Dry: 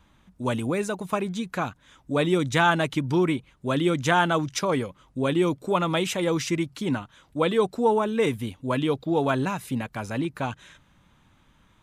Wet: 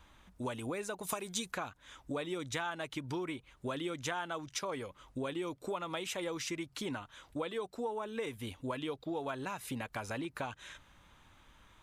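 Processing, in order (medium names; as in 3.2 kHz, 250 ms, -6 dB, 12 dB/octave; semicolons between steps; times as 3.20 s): peaking EQ 170 Hz -9.5 dB 1.7 oct; compression 6:1, threshold -37 dBFS, peak gain reduction 19 dB; 1.03–1.52 s: tone controls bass -1 dB, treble +12 dB; trim +1 dB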